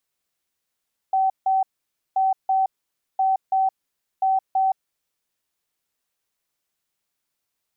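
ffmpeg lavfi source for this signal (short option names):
-f lavfi -i "aevalsrc='0.15*sin(2*PI*766*t)*clip(min(mod(mod(t,1.03),0.33),0.17-mod(mod(t,1.03),0.33))/0.005,0,1)*lt(mod(t,1.03),0.66)':d=4.12:s=44100"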